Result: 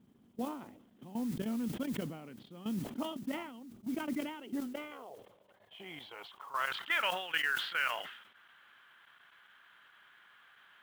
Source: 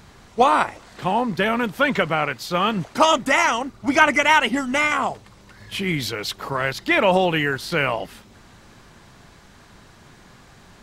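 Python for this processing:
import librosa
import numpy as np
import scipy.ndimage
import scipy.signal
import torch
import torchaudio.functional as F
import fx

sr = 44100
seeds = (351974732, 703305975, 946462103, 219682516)

y = fx.filter_sweep_bandpass(x, sr, from_hz=240.0, to_hz=1500.0, start_s=3.98, end_s=7.05, q=3.3)
y = fx.level_steps(y, sr, step_db=15)
y = fx.lowpass_res(y, sr, hz=3200.0, q=7.0)
y = fx.mod_noise(y, sr, seeds[0], snr_db=21)
y = fx.sustainer(y, sr, db_per_s=70.0)
y = y * 10.0 ** (-4.5 / 20.0)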